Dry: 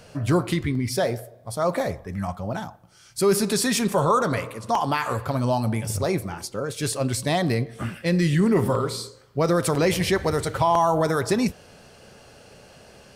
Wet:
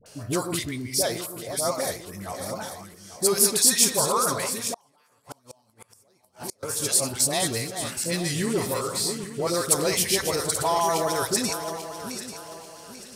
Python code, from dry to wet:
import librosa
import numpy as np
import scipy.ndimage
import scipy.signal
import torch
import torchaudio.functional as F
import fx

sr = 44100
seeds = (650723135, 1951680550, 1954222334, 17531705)

y = fx.reverse_delay_fb(x, sr, ms=420, feedback_pct=58, wet_db=-8.0)
y = fx.bass_treble(y, sr, bass_db=-7, treble_db=14)
y = fx.dispersion(y, sr, late='highs', ms=61.0, hz=880.0)
y = fx.gate_flip(y, sr, shuts_db=-15.0, range_db=-36, at=(4.72, 6.63))
y = y * librosa.db_to_amplitude(-4.0)